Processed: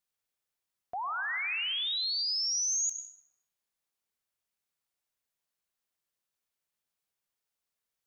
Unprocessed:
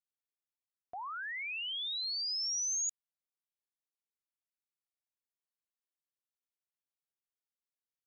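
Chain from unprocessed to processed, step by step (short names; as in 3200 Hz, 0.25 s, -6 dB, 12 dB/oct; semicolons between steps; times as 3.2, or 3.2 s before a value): bell 300 Hz -6 dB 0.27 oct; in parallel at +2 dB: limiter -39 dBFS, peak gain reduction 9 dB; on the sum: plate-style reverb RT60 1.3 s, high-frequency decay 0.45×, pre-delay 90 ms, DRR 8 dB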